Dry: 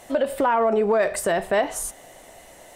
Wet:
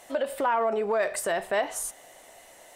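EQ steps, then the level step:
low-shelf EQ 310 Hz −11.5 dB
−3.0 dB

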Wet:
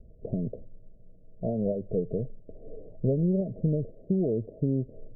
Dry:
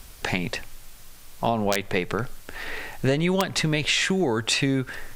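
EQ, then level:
Chebyshev low-pass with heavy ripple 660 Hz, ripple 6 dB
0.0 dB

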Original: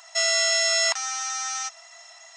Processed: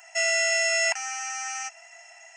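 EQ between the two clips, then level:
low-shelf EQ 500 Hz +4 dB
parametric band 2,700 Hz +10 dB 0.32 octaves
phaser with its sweep stopped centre 760 Hz, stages 8
0.0 dB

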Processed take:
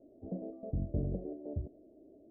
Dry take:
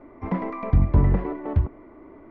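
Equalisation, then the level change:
elliptic low-pass filter 640 Hz, stop band 40 dB
first difference
spectral tilt −3.5 dB per octave
+9.5 dB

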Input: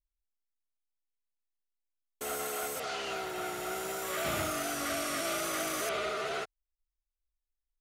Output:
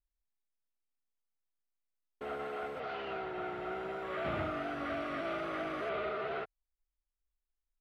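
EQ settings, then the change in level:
high-frequency loss of the air 460 metres
high-shelf EQ 10,000 Hz −10.5 dB
0.0 dB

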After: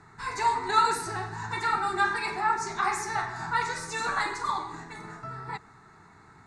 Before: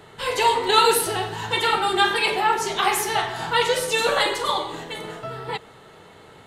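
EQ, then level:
low-pass filter 7,600 Hz 24 dB per octave
phaser with its sweep stopped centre 1,300 Hz, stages 4
−3.0 dB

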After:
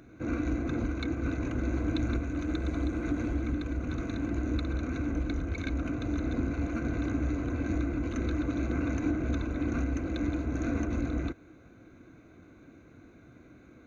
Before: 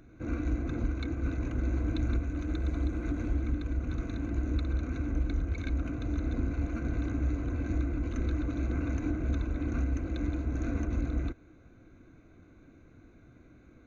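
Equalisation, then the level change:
high-pass filter 130 Hz 6 dB per octave
+4.5 dB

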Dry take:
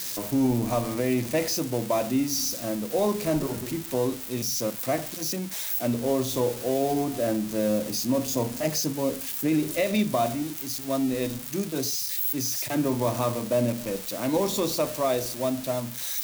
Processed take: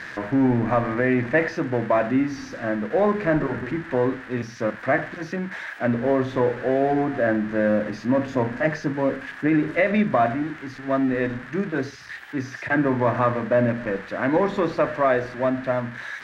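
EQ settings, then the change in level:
low-pass with resonance 1,700 Hz, resonance Q 5
+3.5 dB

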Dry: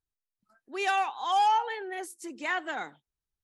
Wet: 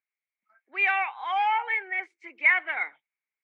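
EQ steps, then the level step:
high-pass filter 590 Hz 12 dB per octave
low-pass with resonance 2,200 Hz, resonance Q 14
high-frequency loss of the air 73 metres
−1.5 dB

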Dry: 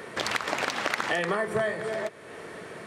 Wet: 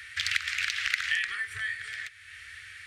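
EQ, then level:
inverse Chebyshev band-stop filter 150–990 Hz, stop band 40 dB
high-shelf EQ 5,100 Hz −9 dB
+5.5 dB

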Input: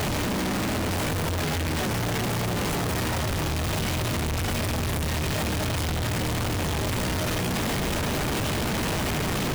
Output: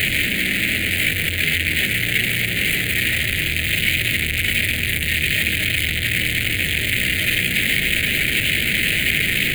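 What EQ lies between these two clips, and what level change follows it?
high shelf with overshoot 1,500 Hz +11.5 dB, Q 3
phaser with its sweep stopped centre 2,400 Hz, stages 4
0.0 dB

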